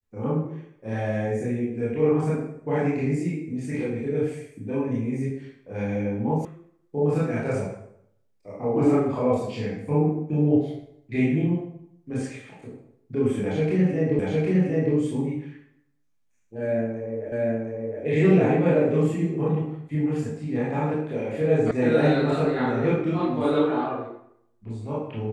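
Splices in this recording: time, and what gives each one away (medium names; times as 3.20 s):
6.45 s: sound stops dead
14.19 s: repeat of the last 0.76 s
17.32 s: repeat of the last 0.71 s
21.71 s: sound stops dead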